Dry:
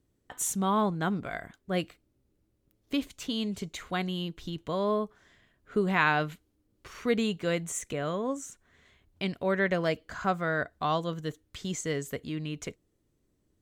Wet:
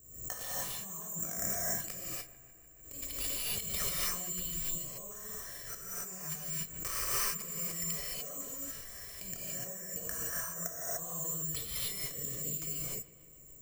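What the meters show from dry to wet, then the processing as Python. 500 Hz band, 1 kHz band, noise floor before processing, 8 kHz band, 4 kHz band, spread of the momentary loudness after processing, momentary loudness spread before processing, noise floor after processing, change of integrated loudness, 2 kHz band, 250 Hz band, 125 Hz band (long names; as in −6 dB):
−16.5 dB, −15.0 dB, −74 dBFS, +5.0 dB, −3.0 dB, 10 LU, 12 LU, −56 dBFS, −4.0 dB, −12.5 dB, −17.5 dB, −11.0 dB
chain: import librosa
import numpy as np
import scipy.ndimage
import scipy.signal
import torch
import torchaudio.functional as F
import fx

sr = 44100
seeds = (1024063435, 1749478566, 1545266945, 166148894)

p1 = fx.high_shelf(x, sr, hz=4500.0, db=-5.0)
p2 = (np.kron(scipy.signal.resample_poly(p1, 1, 6), np.eye(6)[0]) * 6)[:len(p1)]
p3 = p2 * (1.0 - 0.51 / 2.0 + 0.51 / 2.0 * np.cos(2.0 * np.pi * 0.59 * (np.arange(len(p2)) / sr)))
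p4 = fx.over_compress(p3, sr, threshold_db=-40.0, ratio=-1.0)
p5 = p4 + 0.45 * np.pad(p4, (int(1.7 * sr / 1000.0), 0))[:len(p4)]
p6 = p5 + fx.echo_wet_lowpass(p5, sr, ms=149, feedback_pct=71, hz=3000.0, wet_db=-18.5, dry=0)
p7 = fx.rev_gated(p6, sr, seeds[0], gate_ms=320, shape='rising', drr_db=-7.0)
p8 = fx.pre_swell(p7, sr, db_per_s=72.0)
y = F.gain(torch.from_numpy(p8), -8.0).numpy()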